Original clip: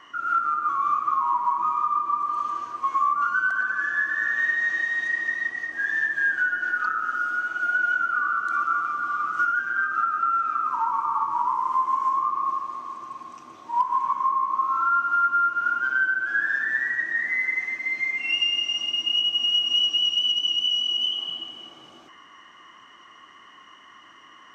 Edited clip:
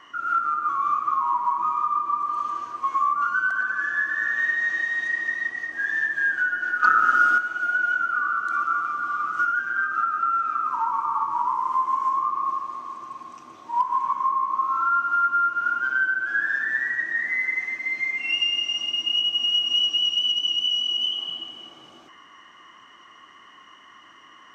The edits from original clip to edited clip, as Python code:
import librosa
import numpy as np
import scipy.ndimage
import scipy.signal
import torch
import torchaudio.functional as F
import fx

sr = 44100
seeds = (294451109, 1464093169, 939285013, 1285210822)

y = fx.edit(x, sr, fx.clip_gain(start_s=6.83, length_s=0.55, db=8.5), tone=tone)